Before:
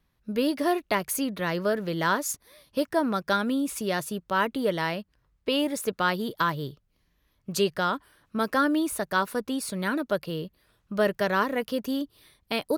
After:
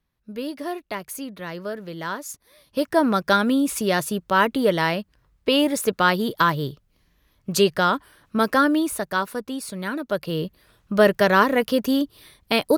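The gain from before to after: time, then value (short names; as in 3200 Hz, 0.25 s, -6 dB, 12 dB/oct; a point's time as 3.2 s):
2.28 s -5 dB
3.01 s +6.5 dB
8.43 s +6.5 dB
9.45 s -0.5 dB
10.01 s -0.5 dB
10.44 s +8 dB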